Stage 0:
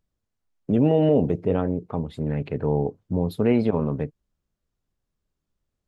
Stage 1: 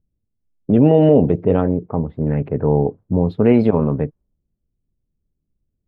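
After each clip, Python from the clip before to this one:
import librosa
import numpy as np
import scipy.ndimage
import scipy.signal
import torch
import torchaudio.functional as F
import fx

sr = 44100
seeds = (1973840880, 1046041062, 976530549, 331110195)

y = fx.env_lowpass(x, sr, base_hz=310.0, full_db=-16.5)
y = fx.high_shelf(y, sr, hz=3700.0, db=-11.0)
y = y * 10.0 ** (7.0 / 20.0)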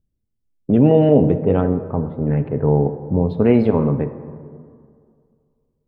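y = fx.rev_plate(x, sr, seeds[0], rt60_s=2.2, hf_ratio=0.4, predelay_ms=0, drr_db=10.0)
y = y * 10.0 ** (-1.0 / 20.0)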